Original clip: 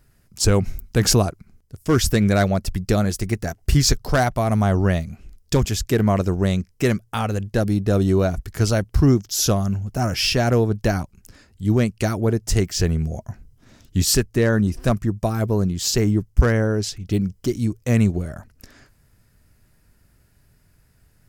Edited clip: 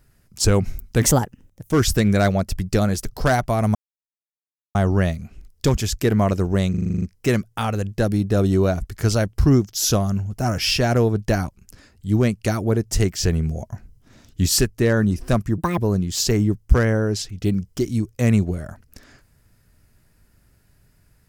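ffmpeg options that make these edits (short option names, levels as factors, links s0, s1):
-filter_complex "[0:a]asplit=15[s0][s1][s2][s3][s4][s5][s6][s7][s8][s9][s10][s11][s12][s13][s14];[s0]atrim=end=1.024[s15];[s1]atrim=start=1.02:end=1.88,asetpts=PTS-STARTPTS,asetrate=54243,aresample=44100,atrim=end_sample=30834,asetpts=PTS-STARTPTS[s16];[s2]atrim=start=1.876:end=3.212[s17];[s3]atrim=start=3.928:end=4.63,asetpts=PTS-STARTPTS,afade=t=out:st=0.698:d=0.004:c=hsin,apad=pad_dur=1[s18];[s4]atrim=start=4.63:end=6.622,asetpts=PTS-STARTPTS,afade=t=in:d=0.004:c=hsin[s19];[s5]atrim=start=6.578:end=6.622[s20];[s6]atrim=start=6.578:end=6.622[s21];[s7]atrim=start=6.578:end=6.622[s22];[s8]atrim=start=6.578:end=6.622[s23];[s9]atrim=start=6.578:end=6.622[s24];[s10]atrim=start=6.578:end=6.622[s25];[s11]atrim=start=6.578:end=6.622[s26];[s12]atrim=start=6.578:end=15.144[s27];[s13]atrim=start=15.14:end=15.45,asetpts=PTS-STARTPTS,asetrate=69237,aresample=44100[s28];[s14]atrim=start=15.446[s29];[s15][s16]acrossfade=d=0.004:c1=hsin:c2=hsin[s30];[s30][s17]acrossfade=d=0.004:c1=hsin:c2=hsin[s31];[s18][s19]concat=n=2:v=0:a=1[s32];[s31][s32]acrossfade=d=0.004:c1=hsin:c2=hsin[s33];[s33][s20]acrossfade=d=0.004:c1=hsin:c2=hsin[s34];[s34][s21]acrossfade=d=0.004:c1=hsin:c2=hsin[s35];[s35][s22]acrossfade=d=0.004:c1=hsin:c2=hsin[s36];[s36][s23]acrossfade=d=0.004:c1=hsin:c2=hsin[s37];[s37][s24]acrossfade=d=0.004:c1=hsin:c2=hsin[s38];[s38][s25]acrossfade=d=0.004:c1=hsin:c2=hsin[s39];[s39][s26]acrossfade=d=0.004:c1=hsin:c2=hsin[s40];[s40][s27]acrossfade=d=0.004:c1=hsin:c2=hsin[s41];[s41][s28]acrossfade=d=0.004:c1=hsin:c2=hsin[s42];[s42][s29]acrossfade=d=0.004:c1=hsin:c2=hsin"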